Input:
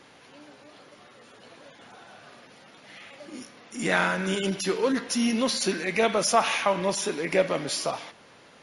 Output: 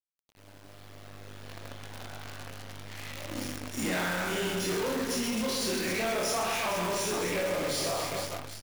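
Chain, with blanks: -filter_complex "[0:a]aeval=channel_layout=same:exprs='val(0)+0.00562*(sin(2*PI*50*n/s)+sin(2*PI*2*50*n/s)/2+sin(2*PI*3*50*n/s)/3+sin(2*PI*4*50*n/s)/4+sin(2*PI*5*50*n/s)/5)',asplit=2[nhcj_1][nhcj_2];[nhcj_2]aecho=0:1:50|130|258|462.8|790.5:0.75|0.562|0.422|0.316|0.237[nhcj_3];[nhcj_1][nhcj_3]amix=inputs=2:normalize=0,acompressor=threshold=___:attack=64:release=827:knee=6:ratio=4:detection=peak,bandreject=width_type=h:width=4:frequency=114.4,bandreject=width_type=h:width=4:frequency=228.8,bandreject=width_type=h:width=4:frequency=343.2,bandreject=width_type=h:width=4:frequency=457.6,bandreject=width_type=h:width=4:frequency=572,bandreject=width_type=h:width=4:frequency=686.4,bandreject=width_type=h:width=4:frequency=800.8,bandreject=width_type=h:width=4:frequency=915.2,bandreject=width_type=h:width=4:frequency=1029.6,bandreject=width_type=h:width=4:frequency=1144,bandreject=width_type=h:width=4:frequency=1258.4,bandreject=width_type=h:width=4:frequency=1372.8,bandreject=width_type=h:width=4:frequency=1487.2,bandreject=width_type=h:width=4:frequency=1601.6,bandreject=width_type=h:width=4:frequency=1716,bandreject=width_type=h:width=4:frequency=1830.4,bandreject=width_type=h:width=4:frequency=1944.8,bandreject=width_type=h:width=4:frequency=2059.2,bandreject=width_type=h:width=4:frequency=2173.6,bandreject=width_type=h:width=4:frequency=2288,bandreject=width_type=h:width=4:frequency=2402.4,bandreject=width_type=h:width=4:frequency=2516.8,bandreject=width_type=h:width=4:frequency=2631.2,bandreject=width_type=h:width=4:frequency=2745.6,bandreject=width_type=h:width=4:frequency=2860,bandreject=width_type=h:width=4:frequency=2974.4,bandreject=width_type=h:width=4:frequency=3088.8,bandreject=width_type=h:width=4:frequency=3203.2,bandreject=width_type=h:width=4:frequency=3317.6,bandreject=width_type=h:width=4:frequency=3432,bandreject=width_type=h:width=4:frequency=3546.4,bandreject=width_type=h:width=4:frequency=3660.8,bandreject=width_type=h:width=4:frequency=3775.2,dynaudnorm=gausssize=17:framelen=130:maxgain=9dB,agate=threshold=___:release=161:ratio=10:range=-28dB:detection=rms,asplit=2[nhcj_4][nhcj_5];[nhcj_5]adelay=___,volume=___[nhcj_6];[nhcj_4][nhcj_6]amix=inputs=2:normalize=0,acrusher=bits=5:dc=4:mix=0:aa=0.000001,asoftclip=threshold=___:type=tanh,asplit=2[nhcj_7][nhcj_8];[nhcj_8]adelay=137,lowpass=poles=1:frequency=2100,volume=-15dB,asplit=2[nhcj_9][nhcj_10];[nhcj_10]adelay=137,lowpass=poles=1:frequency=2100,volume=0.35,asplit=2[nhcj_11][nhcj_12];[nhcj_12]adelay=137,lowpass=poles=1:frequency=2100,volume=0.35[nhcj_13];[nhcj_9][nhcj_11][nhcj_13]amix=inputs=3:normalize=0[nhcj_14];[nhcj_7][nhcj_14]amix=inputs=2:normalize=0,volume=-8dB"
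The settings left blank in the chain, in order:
-27dB, -40dB, 28, -2dB, -18.5dB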